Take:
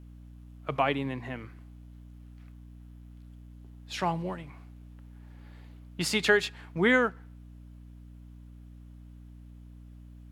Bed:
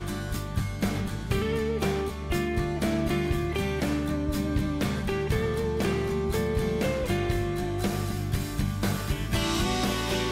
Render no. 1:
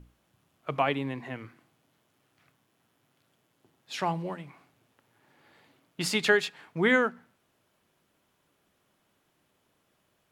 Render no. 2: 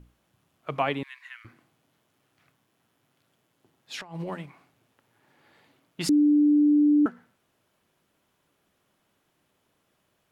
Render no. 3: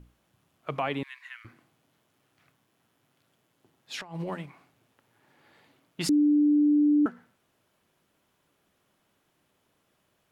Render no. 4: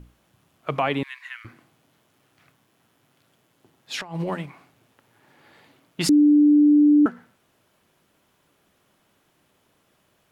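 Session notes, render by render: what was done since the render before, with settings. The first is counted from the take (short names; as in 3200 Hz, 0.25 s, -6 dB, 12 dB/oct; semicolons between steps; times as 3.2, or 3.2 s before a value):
notches 60/120/180/240/300 Hz
1.03–1.45 steep high-pass 1300 Hz; 4–4.46 negative-ratio compressor -35 dBFS, ratio -0.5; 6.09–7.06 bleep 295 Hz -16 dBFS
limiter -18 dBFS, peak gain reduction 5.5 dB
gain +6.5 dB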